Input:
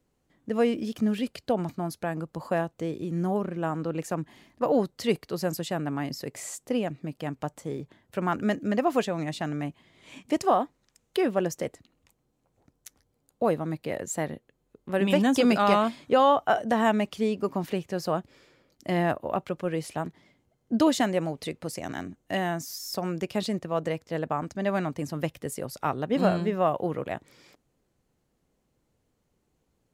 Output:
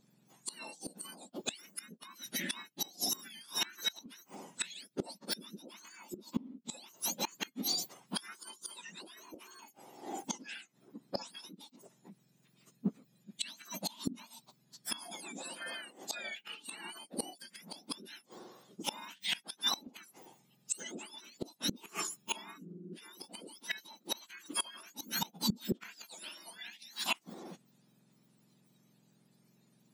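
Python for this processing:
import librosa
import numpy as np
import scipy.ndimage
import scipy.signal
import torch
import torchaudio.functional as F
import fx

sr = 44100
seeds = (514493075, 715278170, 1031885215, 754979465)

y = fx.octave_mirror(x, sr, pivot_hz=1600.0)
y = fx.formant_shift(y, sr, semitones=-5)
y = fx.gate_flip(y, sr, shuts_db=-28.0, range_db=-25)
y = y * librosa.db_to_amplitude(7.5)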